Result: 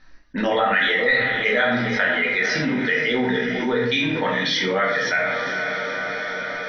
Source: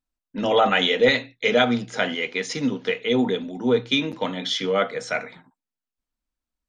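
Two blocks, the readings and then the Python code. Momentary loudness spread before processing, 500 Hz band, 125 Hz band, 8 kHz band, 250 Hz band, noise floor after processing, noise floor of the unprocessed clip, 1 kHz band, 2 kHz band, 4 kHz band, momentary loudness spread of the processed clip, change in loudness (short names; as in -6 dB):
10 LU, -0.5 dB, +2.5 dB, +0.5 dB, +0.5 dB, -39 dBFS, under -85 dBFS, +1.5 dB, +8.0 dB, -0.5 dB, 8 LU, +2.0 dB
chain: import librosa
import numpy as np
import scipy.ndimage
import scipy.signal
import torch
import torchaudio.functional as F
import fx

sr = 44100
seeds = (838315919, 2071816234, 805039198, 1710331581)

y = fx.dereverb_blind(x, sr, rt60_s=1.7)
y = scipy.signal.sosfilt(scipy.signal.cheby1(6, 6, 6000.0, 'lowpass', fs=sr, output='sos'), y)
y = fx.peak_eq(y, sr, hz=1800.0, db=11.5, octaves=0.33)
y = fx.echo_diffused(y, sr, ms=486, feedback_pct=50, wet_db=-14.0)
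y = fx.room_shoebox(y, sr, seeds[0], volume_m3=110.0, walls='mixed', distance_m=1.1)
y = fx.env_flatten(y, sr, amount_pct=70)
y = y * librosa.db_to_amplitude(-7.5)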